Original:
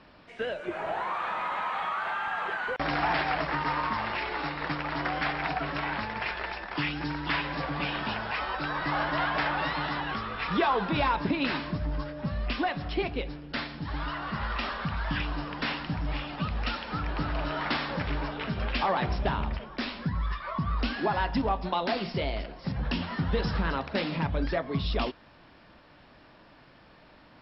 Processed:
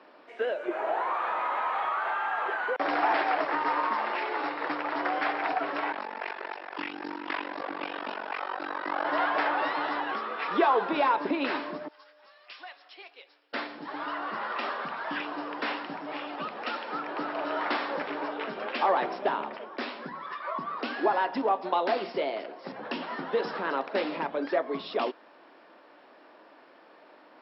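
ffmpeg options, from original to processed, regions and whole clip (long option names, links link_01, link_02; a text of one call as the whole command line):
ffmpeg -i in.wav -filter_complex "[0:a]asettb=1/sr,asplit=3[link_01][link_02][link_03];[link_01]atrim=end=5.924[link_04];[link_02]atrim=start=5.92:end=9.05,asetpts=PTS-STARTPTS,afade=type=in:duration=0.004:curve=qsin,afade=type=out:start_time=3.126:duration=0.004:curve=qsin,aecho=1:1:371:0.188,atrim=end_sample=138033,tremolo=f=47:d=0.974[link_05];[link_03]atrim=start=9.046[link_06];[link_04][link_05]acrossfade=duration=0.004:curve1=hsin:curve2=qsin[link_07];[link_07][link_06]acrossfade=duration=0.004:curve1=qsin:curve2=hsin,asettb=1/sr,asplit=3[link_08][link_09][link_10];[link_08]atrim=end=11.884[link_11];[link_09]atrim=start=11.88:end=13.53,asetpts=PTS-STARTPTS,afade=type=in:duration=0.004:curve=qsin,afade=type=out:start_time=1.646:duration=0.004:curve=qsin,highpass=380,aderivative[link_12];[link_10]atrim=start=13.526[link_13];[link_11][link_12]acrossfade=duration=0.004:curve1=hsin:curve2=qsin[link_14];[link_14][link_13]acrossfade=duration=0.004:curve1=qsin:curve2=hsin,highpass=frequency=320:width=0.5412,highpass=frequency=320:width=1.3066,highshelf=frequency=2200:gain=-12,volume=4.5dB" out.wav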